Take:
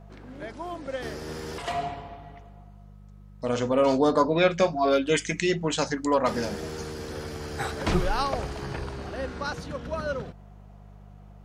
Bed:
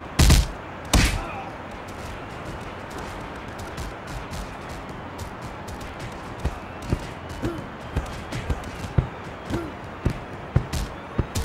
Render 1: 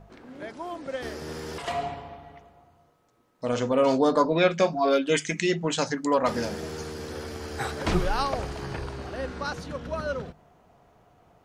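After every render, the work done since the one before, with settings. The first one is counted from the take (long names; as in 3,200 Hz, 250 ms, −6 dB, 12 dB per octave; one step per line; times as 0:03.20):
hum removal 50 Hz, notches 4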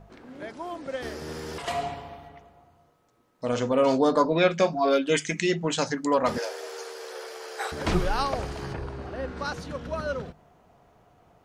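0:01.67–0:02.27: high-shelf EQ 5,900 Hz → 4,200 Hz +8 dB
0:06.38–0:07.72: Butterworth high-pass 400 Hz 48 dB per octave
0:08.72–0:09.36: high-shelf EQ 2,300 Hz → 3,700 Hz −10.5 dB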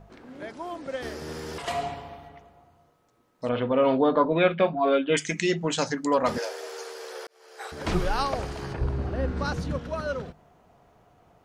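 0:03.49–0:05.17: Butterworth low-pass 3,600 Hz 48 dB per octave
0:07.27–0:08.07: fade in
0:08.80–0:09.79: low-shelf EQ 270 Hz +11.5 dB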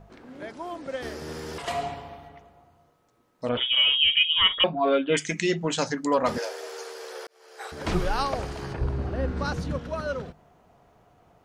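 0:03.57–0:04.64: voice inversion scrambler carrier 3,500 Hz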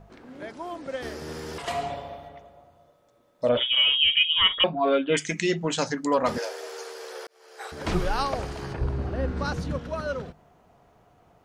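0:01.90–0:03.64: hollow resonant body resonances 580/3,500 Hz, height 14 dB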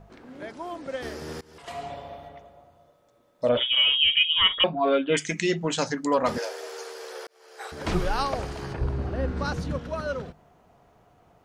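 0:01.41–0:02.25: fade in, from −23.5 dB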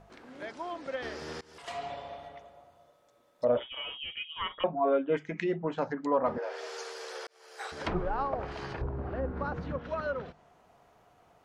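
treble cut that deepens with the level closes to 1,000 Hz, closed at −23.5 dBFS
low-shelf EQ 410 Hz −8.5 dB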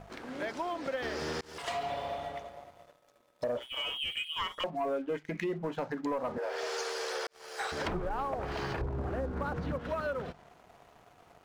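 downward compressor 4 to 1, threshold −39 dBFS, peak gain reduction 15 dB
leveller curve on the samples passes 2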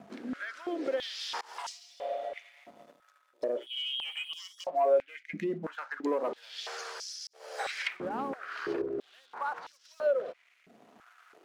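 rotating-speaker cabinet horn 0.6 Hz
high-pass on a step sequencer 3 Hz 230–5,400 Hz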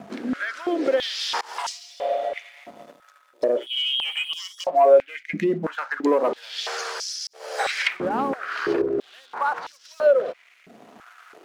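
level +10.5 dB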